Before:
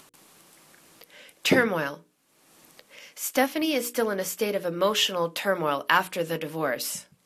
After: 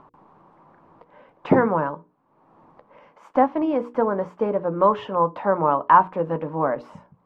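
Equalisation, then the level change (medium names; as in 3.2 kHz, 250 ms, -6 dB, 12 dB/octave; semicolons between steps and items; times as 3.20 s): resonant low-pass 980 Hz, resonance Q 3.8; bass shelf 230 Hz +8.5 dB; 0.0 dB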